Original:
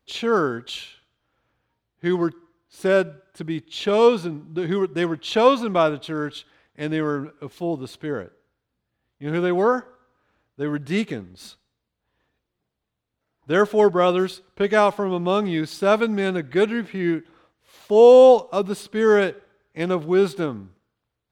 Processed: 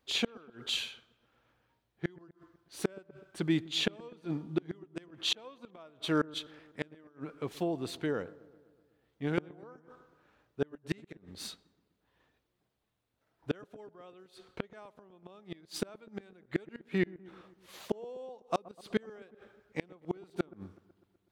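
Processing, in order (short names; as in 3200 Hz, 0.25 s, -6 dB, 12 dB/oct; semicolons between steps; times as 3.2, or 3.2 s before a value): low shelf 150 Hz -5.5 dB; 7.08–9.38 compressor, threshold -29 dBFS, peak gain reduction 8.5 dB; flipped gate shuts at -17 dBFS, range -34 dB; dark delay 0.125 s, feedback 63%, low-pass 1100 Hz, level -20 dB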